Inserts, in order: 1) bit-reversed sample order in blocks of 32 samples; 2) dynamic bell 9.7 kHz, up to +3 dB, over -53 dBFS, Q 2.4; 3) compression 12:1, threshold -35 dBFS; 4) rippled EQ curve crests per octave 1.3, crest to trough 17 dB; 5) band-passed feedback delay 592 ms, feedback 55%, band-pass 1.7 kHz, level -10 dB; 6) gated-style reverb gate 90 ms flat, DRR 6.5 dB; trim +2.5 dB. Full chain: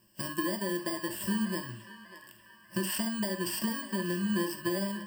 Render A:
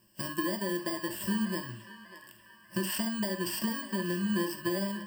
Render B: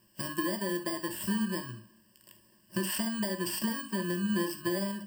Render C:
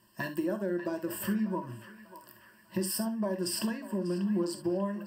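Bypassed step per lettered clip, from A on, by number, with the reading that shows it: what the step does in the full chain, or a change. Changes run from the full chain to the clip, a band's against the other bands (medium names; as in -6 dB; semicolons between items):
2, 8 kHz band -1.5 dB; 5, echo-to-direct -4.5 dB to -6.5 dB; 1, 2 kHz band -5.0 dB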